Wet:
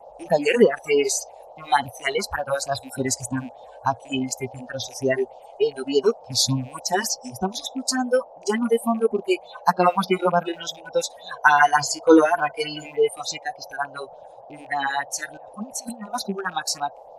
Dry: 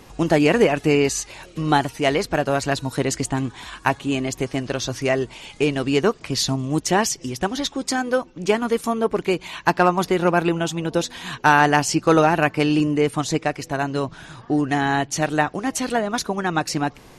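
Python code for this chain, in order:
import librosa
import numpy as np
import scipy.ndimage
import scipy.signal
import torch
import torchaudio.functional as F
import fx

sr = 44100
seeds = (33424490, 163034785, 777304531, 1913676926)

y = fx.rattle_buzz(x, sr, strikes_db=-29.0, level_db=-16.0)
y = fx.over_compress(y, sr, threshold_db=-32.0, ratio=-1.0, at=(15.37, 16.02))
y = fx.phaser_stages(y, sr, stages=4, low_hz=150.0, high_hz=2200.0, hz=3.4, feedback_pct=5)
y = fx.noise_reduce_blind(y, sr, reduce_db=24)
y = fx.dmg_noise_band(y, sr, seeds[0], low_hz=490.0, high_hz=850.0, level_db=-47.0)
y = fx.ripple_eq(y, sr, per_octave=1.8, db=11, at=(11.33, 12.86))
y = y * librosa.db_to_amplitude(3.0)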